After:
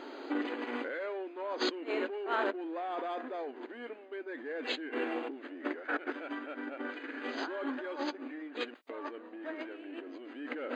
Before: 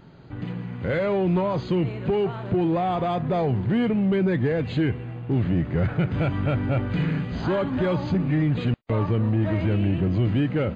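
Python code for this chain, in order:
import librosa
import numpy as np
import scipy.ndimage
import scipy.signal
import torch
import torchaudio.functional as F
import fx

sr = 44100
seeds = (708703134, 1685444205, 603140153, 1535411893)

y = fx.dynamic_eq(x, sr, hz=1600.0, q=3.2, threshold_db=-51.0, ratio=4.0, max_db=8)
y = fx.over_compress(y, sr, threshold_db=-34.0, ratio=-1.0)
y = fx.brickwall_highpass(y, sr, low_hz=250.0)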